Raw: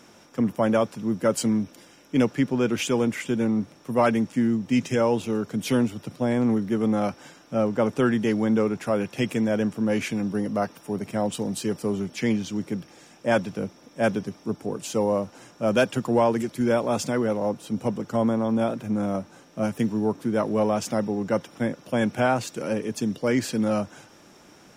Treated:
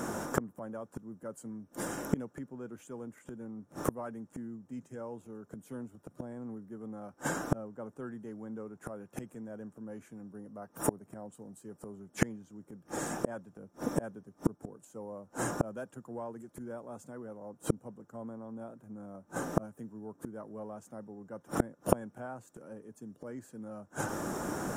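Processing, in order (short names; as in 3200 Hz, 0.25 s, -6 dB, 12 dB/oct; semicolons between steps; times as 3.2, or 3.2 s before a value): band shelf 3400 Hz -14.5 dB; flipped gate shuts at -29 dBFS, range -37 dB; gain +16.5 dB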